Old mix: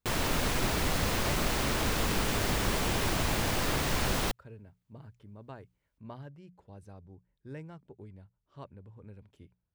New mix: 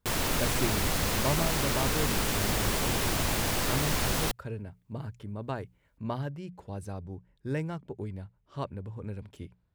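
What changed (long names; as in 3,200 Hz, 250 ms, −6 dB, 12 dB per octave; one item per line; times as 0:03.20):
speech +11.5 dB
master: add parametric band 14,000 Hz +5.5 dB 1.7 octaves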